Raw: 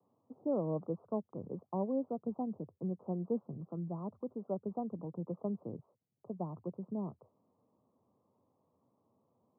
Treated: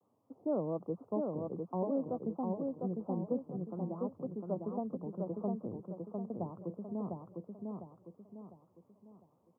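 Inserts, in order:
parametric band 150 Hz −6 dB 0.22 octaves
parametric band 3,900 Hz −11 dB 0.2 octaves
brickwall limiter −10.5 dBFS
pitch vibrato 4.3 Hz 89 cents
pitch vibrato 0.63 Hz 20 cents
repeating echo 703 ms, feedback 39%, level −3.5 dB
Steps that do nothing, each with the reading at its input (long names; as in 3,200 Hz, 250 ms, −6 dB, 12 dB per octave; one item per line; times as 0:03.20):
parametric band 3,900 Hz: nothing at its input above 1,100 Hz
brickwall limiter −10.5 dBFS: peak of its input −23.0 dBFS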